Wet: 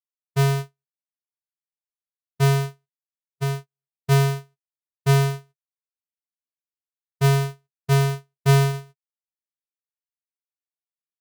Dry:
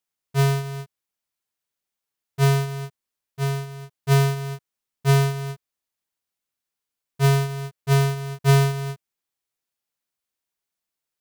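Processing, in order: gate -26 dBFS, range -60 dB

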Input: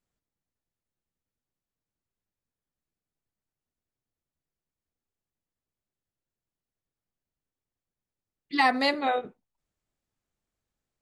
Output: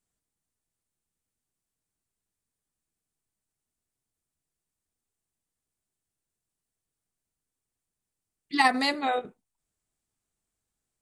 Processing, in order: peaking EQ 8.8 kHz +11.5 dB 0.77 oct; band-stop 550 Hz, Q 12; in parallel at +2.5 dB: level held to a coarse grid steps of 10 dB; on the sum: trim -5.5 dB

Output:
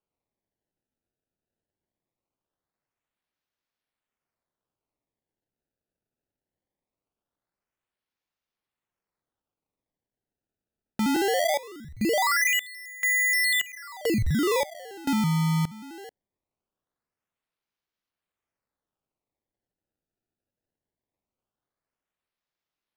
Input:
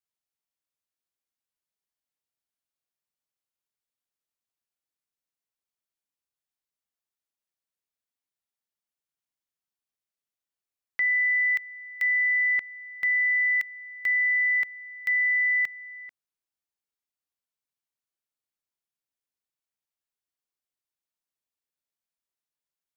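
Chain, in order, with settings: 11.16–11.85 s: elliptic high-pass 1.7 kHz; decimation with a swept rate 23×, swing 160% 0.21 Hz

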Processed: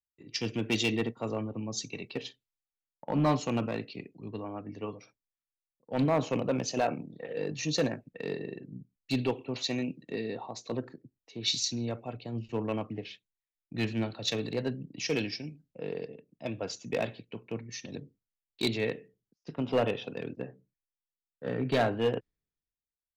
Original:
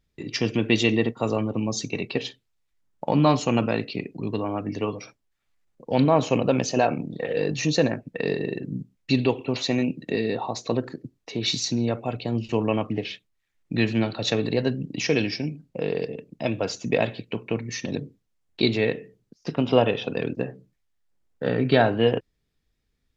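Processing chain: hard clipper -14 dBFS, distortion -16 dB; three bands expanded up and down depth 70%; trim -8.5 dB

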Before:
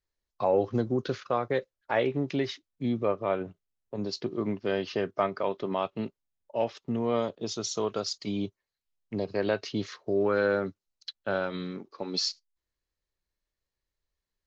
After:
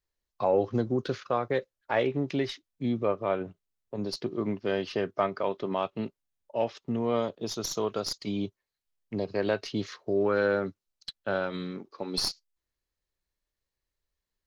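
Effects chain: tracing distortion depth 0.033 ms

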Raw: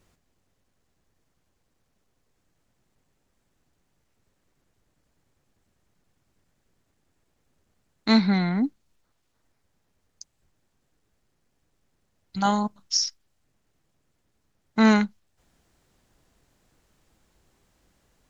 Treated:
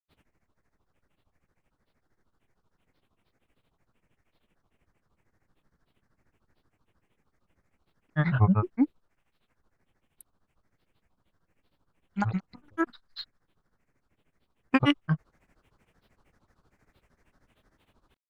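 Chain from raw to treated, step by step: resonant high shelf 2.8 kHz -7 dB, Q 3; granulator 100 ms, grains 13 per s, spray 208 ms, pitch spread up and down by 12 st; trim +2.5 dB

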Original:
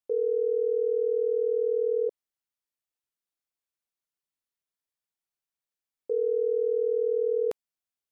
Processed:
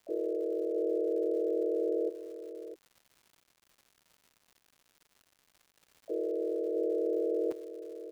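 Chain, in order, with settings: delay 650 ms -10.5 dB; harmony voices -5 st -4 dB, +5 st -10 dB; crackle 240 per s -41 dBFS; trim -8.5 dB

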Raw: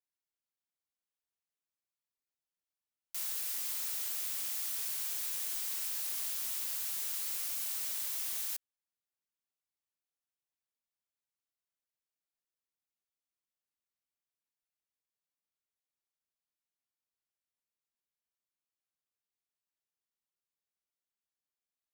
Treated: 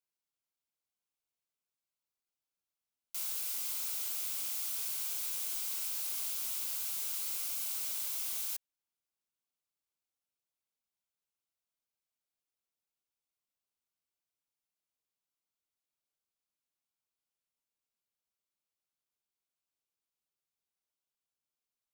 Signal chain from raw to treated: band-stop 1.8 kHz, Q 5.1

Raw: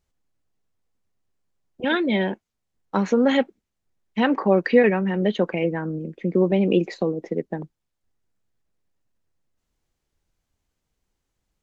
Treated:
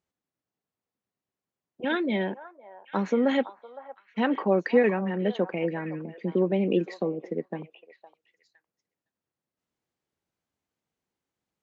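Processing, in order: high-pass 150 Hz 12 dB/octave; treble shelf 4.1 kHz -7 dB; repeats whose band climbs or falls 511 ms, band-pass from 890 Hz, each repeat 1.4 oct, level -10 dB; trim -4.5 dB

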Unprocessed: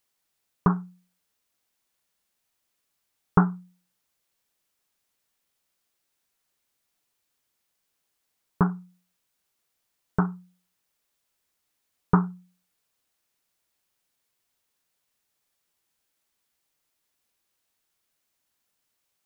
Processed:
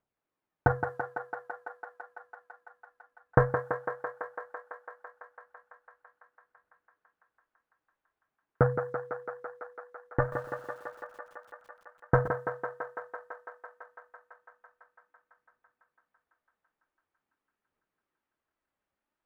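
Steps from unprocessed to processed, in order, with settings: level-controlled noise filter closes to 1.3 kHz, open at -28.5 dBFS; phaser 0.45 Hz, delay 4.2 ms, feedback 53%; ring modulator 310 Hz; thinning echo 167 ms, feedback 85%, high-pass 270 Hz, level -6 dB; 10.20–12.28 s: bit-crushed delay 120 ms, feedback 35%, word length 8-bit, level -14 dB

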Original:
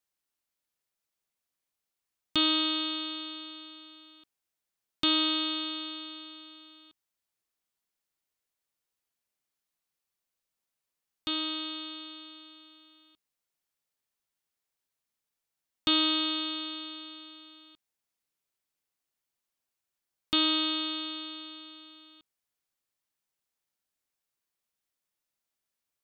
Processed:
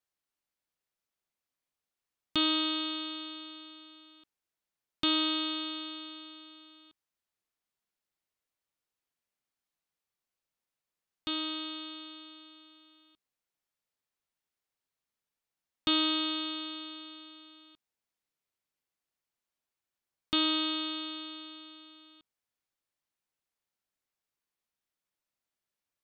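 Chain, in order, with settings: treble shelf 5.1 kHz -6.5 dB; trim -1 dB

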